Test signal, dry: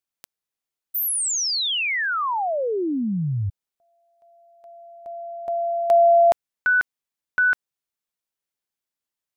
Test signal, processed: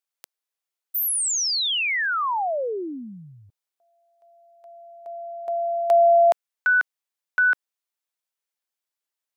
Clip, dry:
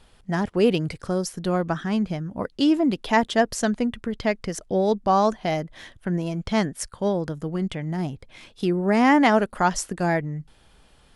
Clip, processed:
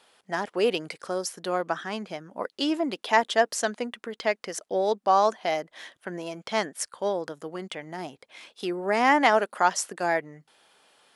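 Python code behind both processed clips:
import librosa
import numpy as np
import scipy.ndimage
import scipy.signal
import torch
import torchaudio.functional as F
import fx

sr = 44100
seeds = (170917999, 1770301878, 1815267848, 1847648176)

y = scipy.signal.sosfilt(scipy.signal.butter(2, 460.0, 'highpass', fs=sr, output='sos'), x)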